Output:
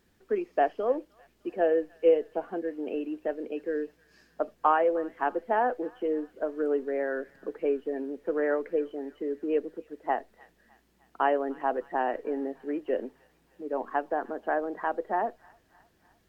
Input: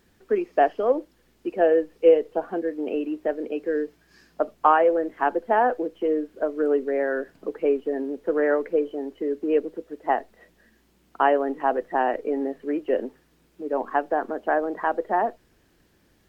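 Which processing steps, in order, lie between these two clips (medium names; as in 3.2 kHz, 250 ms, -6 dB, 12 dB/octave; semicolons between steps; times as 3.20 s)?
feedback echo behind a high-pass 304 ms, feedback 60%, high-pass 1.4 kHz, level -20.5 dB; trim -5.5 dB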